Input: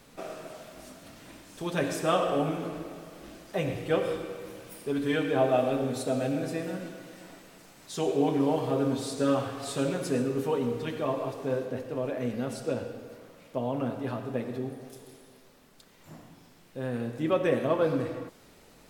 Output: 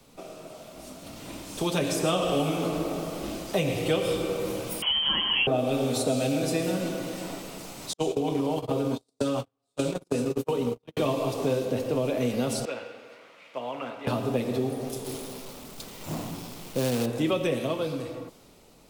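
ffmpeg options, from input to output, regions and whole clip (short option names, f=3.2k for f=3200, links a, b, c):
-filter_complex "[0:a]asettb=1/sr,asplit=3[a][b][c];[a]atrim=end=4.824[d];[b]atrim=start=4.82:end=5.47,asetpts=PTS-STARTPTS,afade=t=in:d=0.004:c=qsin,afade=t=out:st=0.646:d=0.004:c=qsin,aeval=exprs='val(0)+0.5*0.0158*sgn(val(0))':c=same,lowpass=f=2.9k:t=q:w=0.5098,lowpass=f=2.9k:t=q:w=0.6013,lowpass=f=2.9k:t=q:w=0.9,lowpass=f=2.9k:t=q:w=2.563,afreqshift=-3400[e];[c]atrim=start=5.466[f];[d][e]acrossfade=d=0.004:c1=hsin:c2=qsin[g];[g][f]acrossfade=d=0.004:c1=qsin:c2=hsin,asettb=1/sr,asplit=3[h][i][j];[h]atrim=end=7.934[k];[i]atrim=start=7.93:end=10.97,asetpts=PTS-STARTPTS,afade=t=in:d=0.004:c=qsin,afade=t=out:st=3.036:d=0.004:c=qsin,agate=range=-56dB:threshold=-29dB:ratio=16:release=100:detection=peak,acompressor=threshold=-29dB:ratio=10:attack=3.2:release=140:knee=1:detection=peak[l];[j]atrim=start=10.966[m];[k][l]acrossfade=d=0.004:c1=hsin:c2=qsin[n];[n][m]acrossfade=d=0.004:c1=qsin:c2=hsin,asettb=1/sr,asplit=3[o][p][q];[o]atrim=end=12.654[r];[p]atrim=start=12.65:end=14.07,asetpts=PTS-STARTPTS,afade=t=in:d=0.004:c=qsin,afade=t=out:st=1.416:d=0.004:c=qsin,acrusher=bits=8:mode=log:mix=0:aa=0.000001,bandpass=f=2k:t=q:w=1.7[s];[q]atrim=start=14.066[t];[r][s]acrossfade=d=0.004:c1=hsin:c2=qsin[u];[u][t]acrossfade=d=0.004:c1=qsin:c2=hsin,asettb=1/sr,asplit=3[v][w][x];[v]atrim=end=15.044[y];[w]atrim=start=15.04:end=17.06,asetpts=PTS-STARTPTS,afade=t=in:d=0.004:c=qsin,afade=t=out:st=2.016:d=0.004:c=qsin,aeval=exprs='val(0)+0.5*0.00355*sgn(val(0))':c=same,agate=range=-33dB:threshold=-48dB:ratio=3:release=100:detection=peak,acrusher=bits=3:mode=log:mix=0:aa=0.000001[z];[x]atrim=start=17.056[aa];[y][z]acrossfade=d=0.004:c1=hsin:c2=qsin[ab];[ab][aa]acrossfade=d=0.004:c1=qsin:c2=hsin,acrossover=split=130|380|2300[ac][ad][ae][af];[ac]acompressor=threshold=-53dB:ratio=4[ag];[ad]acompressor=threshold=-44dB:ratio=4[ah];[ae]acompressor=threshold=-42dB:ratio=4[ai];[af]acompressor=threshold=-44dB:ratio=4[aj];[ag][ah][ai][aj]amix=inputs=4:normalize=0,equalizer=f=1.7k:t=o:w=0.53:g=-9,dynaudnorm=f=120:g=21:m=13dB"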